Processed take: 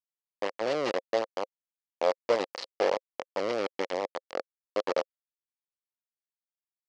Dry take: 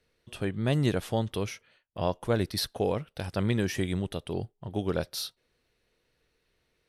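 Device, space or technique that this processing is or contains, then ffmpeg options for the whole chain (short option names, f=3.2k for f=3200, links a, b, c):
hand-held game console: -af "acrusher=bits=3:mix=0:aa=0.000001,highpass=460,equalizer=f=530:t=q:w=4:g=9,equalizer=f=1.5k:t=q:w=4:g=-7,equalizer=f=2.5k:t=q:w=4:g=-5,equalizer=f=3.6k:t=q:w=4:g=-9,lowpass=f=4.8k:w=0.5412,lowpass=f=4.8k:w=1.3066"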